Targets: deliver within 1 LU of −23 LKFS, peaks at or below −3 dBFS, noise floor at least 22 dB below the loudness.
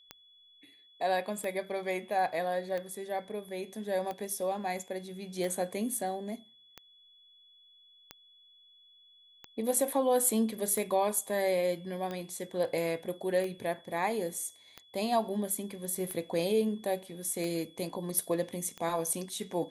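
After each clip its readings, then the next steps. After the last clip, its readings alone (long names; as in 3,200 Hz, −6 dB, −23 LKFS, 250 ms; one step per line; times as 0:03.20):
number of clicks 15; interfering tone 3,400 Hz; level of the tone −58 dBFS; integrated loudness −32.5 LKFS; sample peak −14.5 dBFS; target loudness −23.0 LKFS
→ click removal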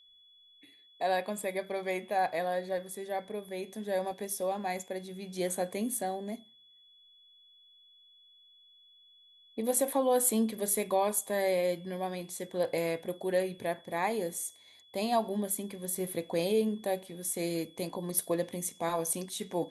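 number of clicks 0; interfering tone 3,400 Hz; level of the tone −58 dBFS
→ notch filter 3,400 Hz, Q 30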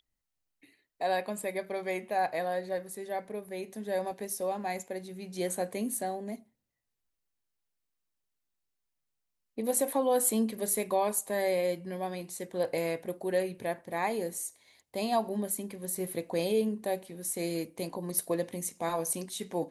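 interfering tone none found; integrated loudness −32.5 LKFS; sample peak −14.5 dBFS; target loudness −23.0 LKFS
→ level +9.5 dB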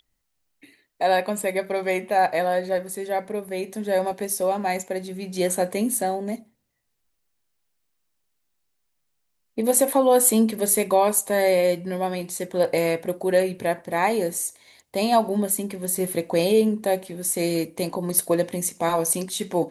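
integrated loudness −23.0 LKFS; sample peak −5.0 dBFS; background noise floor −74 dBFS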